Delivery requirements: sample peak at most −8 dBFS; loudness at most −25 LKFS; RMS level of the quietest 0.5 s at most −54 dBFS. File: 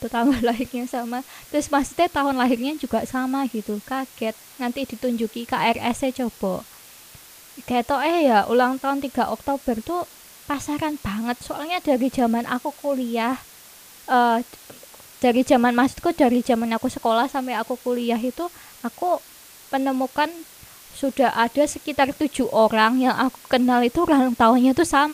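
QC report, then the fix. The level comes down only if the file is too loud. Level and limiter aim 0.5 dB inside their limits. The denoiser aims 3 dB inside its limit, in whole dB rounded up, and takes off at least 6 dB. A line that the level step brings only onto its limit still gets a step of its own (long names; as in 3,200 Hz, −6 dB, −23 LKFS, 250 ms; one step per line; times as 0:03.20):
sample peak −4.0 dBFS: out of spec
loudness −22.0 LKFS: out of spec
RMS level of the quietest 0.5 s −46 dBFS: out of spec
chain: broadband denoise 8 dB, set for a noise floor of −46 dBFS
level −3.5 dB
brickwall limiter −8.5 dBFS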